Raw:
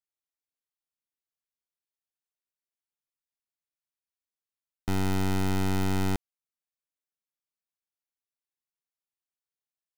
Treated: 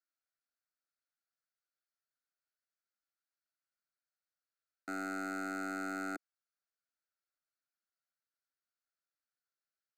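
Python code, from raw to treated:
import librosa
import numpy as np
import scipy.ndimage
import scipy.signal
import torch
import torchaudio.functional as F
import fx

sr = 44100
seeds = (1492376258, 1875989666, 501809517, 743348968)

y = fx.cabinet(x, sr, low_hz=320.0, low_slope=24, high_hz=6000.0, hz=(990.0, 1400.0, 2900.0, 4300.0), db=(-4, 10, 5, 8))
y = 10.0 ** (-30.5 / 20.0) * np.tanh(y / 10.0 ** (-30.5 / 20.0))
y = fx.fixed_phaser(y, sr, hz=630.0, stages=8)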